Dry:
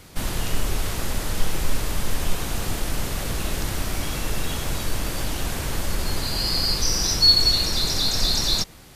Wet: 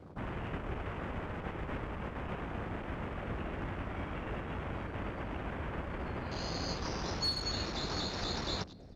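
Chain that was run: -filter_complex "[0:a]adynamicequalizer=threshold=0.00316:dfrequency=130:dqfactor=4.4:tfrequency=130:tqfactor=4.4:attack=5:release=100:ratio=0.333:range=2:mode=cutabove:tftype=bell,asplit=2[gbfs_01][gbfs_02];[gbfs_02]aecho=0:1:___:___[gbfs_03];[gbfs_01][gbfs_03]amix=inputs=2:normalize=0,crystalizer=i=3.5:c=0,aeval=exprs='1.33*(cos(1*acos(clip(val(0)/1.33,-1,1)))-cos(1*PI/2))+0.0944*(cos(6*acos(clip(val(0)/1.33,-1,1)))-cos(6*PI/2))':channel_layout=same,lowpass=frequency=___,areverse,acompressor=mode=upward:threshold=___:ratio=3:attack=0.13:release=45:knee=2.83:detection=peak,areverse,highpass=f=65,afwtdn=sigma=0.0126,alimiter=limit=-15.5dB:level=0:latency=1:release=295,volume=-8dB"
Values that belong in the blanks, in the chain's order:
691, 0.224, 1.6k, -31dB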